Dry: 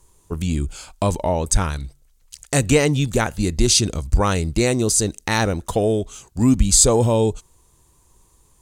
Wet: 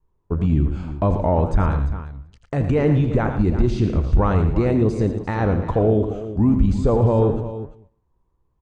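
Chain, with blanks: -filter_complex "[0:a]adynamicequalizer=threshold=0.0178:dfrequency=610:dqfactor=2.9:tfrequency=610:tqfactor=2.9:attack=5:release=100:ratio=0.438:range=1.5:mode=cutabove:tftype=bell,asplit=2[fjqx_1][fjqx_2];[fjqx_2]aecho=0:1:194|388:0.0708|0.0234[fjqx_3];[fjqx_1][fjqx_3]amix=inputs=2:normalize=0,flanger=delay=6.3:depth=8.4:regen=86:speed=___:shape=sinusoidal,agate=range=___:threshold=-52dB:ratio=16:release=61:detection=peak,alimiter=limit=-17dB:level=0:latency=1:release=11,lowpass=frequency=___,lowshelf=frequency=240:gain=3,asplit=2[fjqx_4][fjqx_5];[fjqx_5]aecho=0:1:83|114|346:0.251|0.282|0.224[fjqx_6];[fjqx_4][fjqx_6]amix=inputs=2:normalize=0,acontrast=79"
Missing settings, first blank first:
1.9, -16dB, 1.4k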